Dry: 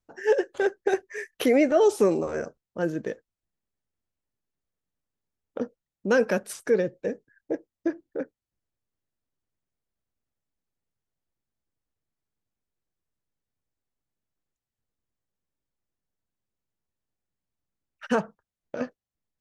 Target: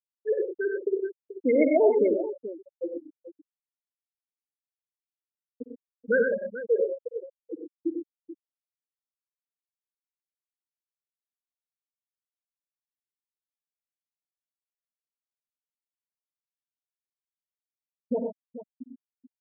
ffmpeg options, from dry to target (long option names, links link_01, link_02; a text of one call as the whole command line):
ffmpeg -i in.wav -af "lowpass=frequency=4300:width=0.5412,lowpass=frequency=4300:width=1.3066,equalizer=frequency=2400:width_type=o:width=2.2:gain=5,afftfilt=real='re*gte(hypot(re,im),0.501)':imag='im*gte(hypot(re,im),0.501)':win_size=1024:overlap=0.75,dynaudnorm=framelen=160:gausssize=9:maxgain=3.5dB,aecho=1:1:55|71|96|122|434:0.224|0.112|0.531|0.355|0.211,volume=-5.5dB" out.wav